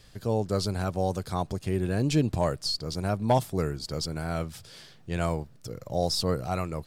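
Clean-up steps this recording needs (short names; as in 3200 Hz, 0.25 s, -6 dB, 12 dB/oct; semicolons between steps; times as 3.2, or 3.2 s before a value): clip repair -14.5 dBFS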